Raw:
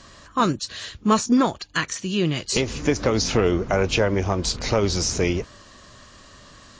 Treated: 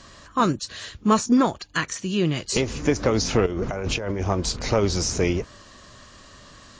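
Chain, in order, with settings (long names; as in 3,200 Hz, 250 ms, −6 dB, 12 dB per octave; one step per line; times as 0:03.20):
dynamic equaliser 3,700 Hz, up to −3 dB, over −40 dBFS, Q 0.86
0:03.46–0:04.21: compressor whose output falls as the input rises −27 dBFS, ratio −1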